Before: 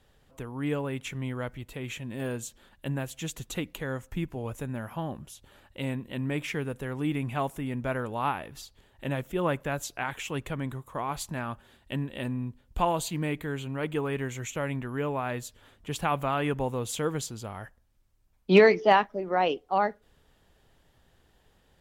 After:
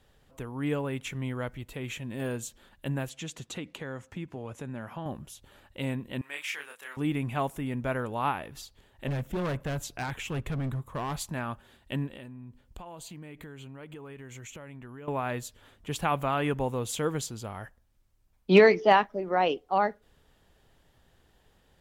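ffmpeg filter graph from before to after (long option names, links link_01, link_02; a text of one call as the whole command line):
ffmpeg -i in.wav -filter_complex "[0:a]asettb=1/sr,asplit=3[link_01][link_02][link_03];[link_01]atrim=end=3.094[link_04];[link_02]atrim=start=3.09:end=5.06,asetpts=PTS-STARTPTS,afade=type=in:duration=0.004:curve=qsin,afade=type=out:start_time=1.966:duration=0.004:curve=qsin,highpass=110,lowpass=7500,acompressor=threshold=-34dB:ratio=3:attack=3.2:release=140:knee=1:detection=peak[link_05];[link_03]atrim=start=5.056[link_06];[link_04][link_05]acrossfade=duration=0.004:curve1=hsin:curve2=qsin[link_07];[link_07][link_06]acrossfade=duration=0.004:curve1=qsin:curve2=hsin,asettb=1/sr,asplit=3[link_08][link_09][link_10];[link_08]atrim=end=6.214[link_11];[link_09]atrim=start=6.21:end=6.97,asetpts=PTS-STARTPTS,afade=type=in:duration=0.004:curve=qsin,afade=type=out:start_time=0.756:duration=0.004:curve=qsin,highpass=1300,asplit=2[link_12][link_13];[link_13]adelay=28,volume=-3.5dB[link_14];[link_12][link_14]amix=inputs=2:normalize=0,atrim=end_sample=33516[link_15];[link_10]atrim=start=6.966[link_16];[link_11][link_15]acrossfade=duration=0.004:curve1=hsin:curve2=qsin[link_17];[link_17][link_16]acrossfade=duration=0.004:curve1=qsin:curve2=hsin,asettb=1/sr,asplit=3[link_18][link_19][link_20];[link_18]atrim=end=9.074[link_21];[link_19]atrim=start=9.07:end=11.16,asetpts=PTS-STARTPTS,afade=type=in:duration=0.004:curve=qsin,afade=type=out:start_time=2.086:duration=0.004:curve=qsin,bass=frequency=250:gain=7,treble=frequency=4000:gain=-3,asoftclip=type=hard:threshold=-28dB[link_22];[link_20]atrim=start=11.156[link_23];[link_21][link_22]acrossfade=duration=0.004:curve1=hsin:curve2=qsin[link_24];[link_24][link_23]acrossfade=duration=0.004:curve1=qsin:curve2=hsin,asettb=1/sr,asplit=3[link_25][link_26][link_27];[link_25]atrim=end=12.074[link_28];[link_26]atrim=start=12.07:end=15.08,asetpts=PTS-STARTPTS,afade=type=in:duration=0.004:curve=qsin,afade=type=out:start_time=3.006:duration=0.004:curve=qsin,equalizer=frequency=12000:width_type=o:width=0.2:gain=-3.5,acompressor=threshold=-40dB:ratio=12:attack=3.2:release=140:knee=1:detection=peak,bandreject=frequency=3700:width=27[link_29];[link_27]atrim=start=15.076[link_30];[link_28][link_29]acrossfade=duration=0.004:curve1=hsin:curve2=qsin[link_31];[link_31][link_30]acrossfade=duration=0.004:curve1=qsin:curve2=hsin" out.wav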